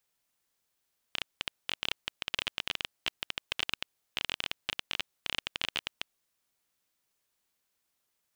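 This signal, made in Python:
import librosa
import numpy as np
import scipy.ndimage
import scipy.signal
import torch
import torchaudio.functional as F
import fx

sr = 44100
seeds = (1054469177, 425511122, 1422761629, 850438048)

y = fx.geiger_clicks(sr, seeds[0], length_s=4.99, per_s=17.0, level_db=-13.0)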